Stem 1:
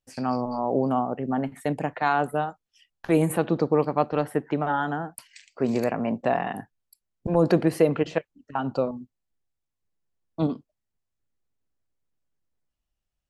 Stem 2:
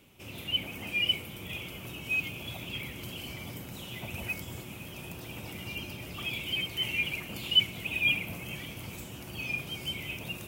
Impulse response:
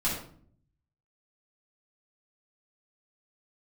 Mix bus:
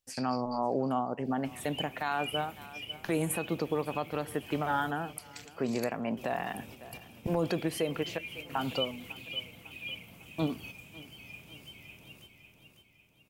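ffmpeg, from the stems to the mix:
-filter_complex "[0:a]highshelf=f=2000:g=9.5,volume=0.631,asplit=3[s0][s1][s2];[s1]volume=0.0668[s3];[1:a]adelay=1250,volume=0.473,asplit=3[s4][s5][s6];[s4]atrim=end=4.91,asetpts=PTS-STARTPTS,afade=t=out:st=4.906:d=0.004:c=hsin[s7];[s5]atrim=start=4.91:end=6.17,asetpts=PTS-STARTPTS,volume=0[s8];[s6]atrim=start=6.17,asetpts=PTS-STARTPTS,afade=t=in:d=0.004:c=hsin[s9];[s7][s8][s9]concat=n=3:v=0:a=1,asplit=2[s10][s11];[s11]volume=0.376[s12];[s2]apad=whole_len=517270[s13];[s10][s13]sidechaingate=range=0.251:threshold=0.00224:ratio=16:detection=peak[s14];[s3][s12]amix=inputs=2:normalize=0,aecho=0:1:551|1102|1653|2204|2755|3306|3857:1|0.47|0.221|0.104|0.0488|0.0229|0.0108[s15];[s0][s14][s15]amix=inputs=3:normalize=0,alimiter=limit=0.1:level=0:latency=1:release=361"

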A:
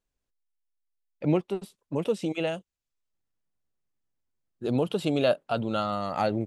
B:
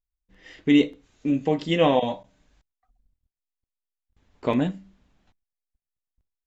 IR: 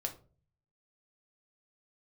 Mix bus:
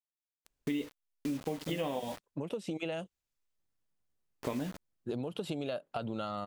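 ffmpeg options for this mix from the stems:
-filter_complex "[0:a]acompressor=threshold=0.0316:ratio=6,adelay=450,volume=1[s0];[1:a]acrusher=bits=5:mix=0:aa=0.000001,volume=0.562,asplit=2[s1][s2];[s2]apad=whole_len=304909[s3];[s0][s3]sidechaincompress=threshold=0.0631:ratio=8:attack=5.4:release=957[s4];[s4][s1]amix=inputs=2:normalize=0,acompressor=threshold=0.0251:ratio=6"

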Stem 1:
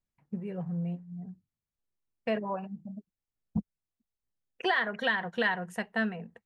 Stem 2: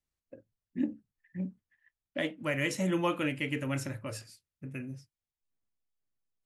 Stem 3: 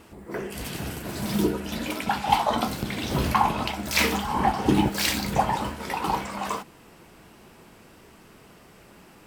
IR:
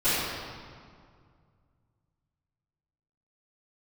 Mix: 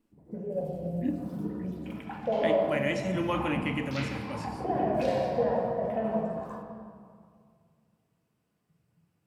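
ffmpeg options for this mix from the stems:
-filter_complex "[0:a]lowpass=f=610:t=q:w=5.6,volume=0.891,asplit=2[s0][s1];[s1]volume=0.133[s2];[1:a]adelay=250,volume=0.891,asplit=2[s3][s4];[s4]volume=0.075[s5];[2:a]highpass=f=54:w=0.5412,highpass=f=54:w=1.3066,equalizer=f=160:t=o:w=1.4:g=6.5,afwtdn=0.0224,volume=0.141,asplit=2[s6][s7];[s7]volume=0.168[s8];[s0][s6]amix=inputs=2:normalize=0,highshelf=f=5000:g=7,acompressor=threshold=0.0126:ratio=2,volume=1[s9];[3:a]atrim=start_sample=2205[s10];[s2][s5][s8]amix=inputs=3:normalize=0[s11];[s11][s10]afir=irnorm=-1:irlink=0[s12];[s3][s9][s12]amix=inputs=3:normalize=0,acrossover=split=5400[s13][s14];[s14]acompressor=threshold=0.00126:ratio=4:attack=1:release=60[s15];[s13][s15]amix=inputs=2:normalize=0"

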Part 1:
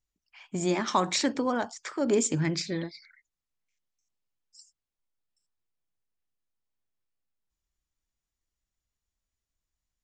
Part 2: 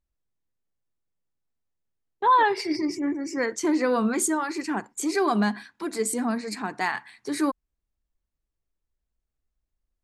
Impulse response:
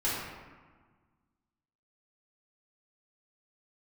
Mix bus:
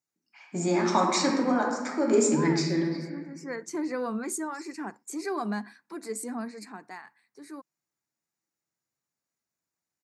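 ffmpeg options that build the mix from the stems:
-filter_complex "[0:a]volume=0.708,asplit=2[s0][s1];[s1]volume=0.562[s2];[1:a]adelay=100,volume=0.398,afade=t=in:st=2.86:d=0.78:silence=0.281838,afade=t=out:st=6.46:d=0.56:silence=0.316228[s3];[2:a]atrim=start_sample=2205[s4];[s2][s4]afir=irnorm=-1:irlink=0[s5];[s0][s3][s5]amix=inputs=3:normalize=0,highpass=f=140:w=0.5412,highpass=f=140:w=1.3066,equalizer=f=3200:t=o:w=0.41:g=-11"

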